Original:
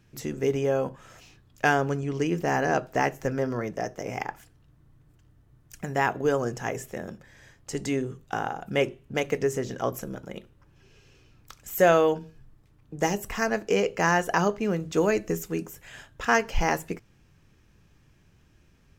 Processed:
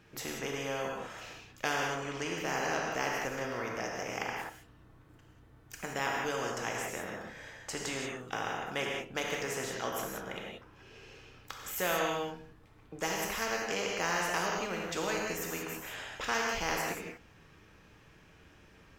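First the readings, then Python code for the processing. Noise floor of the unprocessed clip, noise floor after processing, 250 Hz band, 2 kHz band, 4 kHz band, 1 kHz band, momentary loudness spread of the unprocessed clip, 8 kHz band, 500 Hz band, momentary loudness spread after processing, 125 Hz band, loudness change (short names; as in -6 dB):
-61 dBFS, -59 dBFS, -11.0 dB, -4.5 dB, +1.0 dB, -7.0 dB, 15 LU, -0.5 dB, -10.5 dB, 15 LU, -12.5 dB, -8.0 dB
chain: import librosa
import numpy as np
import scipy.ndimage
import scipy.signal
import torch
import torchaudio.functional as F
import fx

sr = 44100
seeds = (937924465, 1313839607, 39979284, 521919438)

y = fx.bass_treble(x, sr, bass_db=-11, treble_db=-8)
y = fx.rev_gated(y, sr, seeds[0], gate_ms=210, shape='flat', drr_db=0.0)
y = fx.spectral_comp(y, sr, ratio=2.0)
y = y * librosa.db_to_amplitude(-9.0)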